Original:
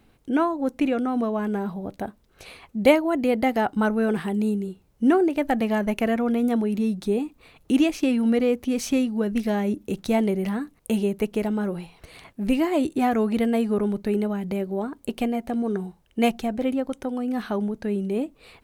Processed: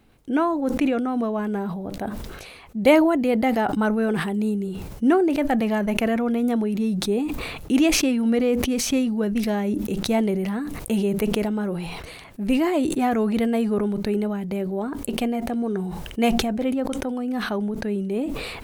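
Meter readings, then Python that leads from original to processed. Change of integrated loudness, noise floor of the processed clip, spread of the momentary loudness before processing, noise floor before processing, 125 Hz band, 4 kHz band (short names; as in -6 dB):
+1.0 dB, -40 dBFS, 9 LU, -60 dBFS, +2.5 dB, +6.0 dB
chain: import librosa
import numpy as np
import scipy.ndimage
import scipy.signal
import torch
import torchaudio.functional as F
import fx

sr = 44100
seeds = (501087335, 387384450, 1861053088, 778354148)

y = fx.sustainer(x, sr, db_per_s=34.0)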